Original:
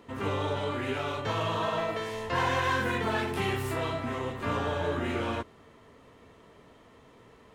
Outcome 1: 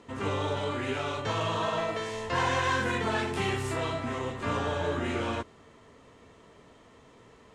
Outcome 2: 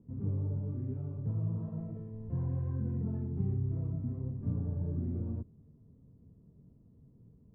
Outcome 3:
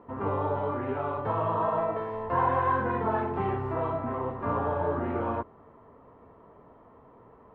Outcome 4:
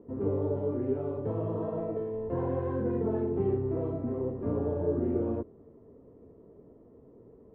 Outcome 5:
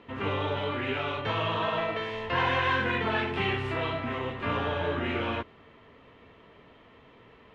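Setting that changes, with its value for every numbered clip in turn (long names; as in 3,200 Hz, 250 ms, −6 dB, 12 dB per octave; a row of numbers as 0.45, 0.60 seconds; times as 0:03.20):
low-pass with resonance, frequency: 7,800, 160, 1,000, 410, 2,900 Hertz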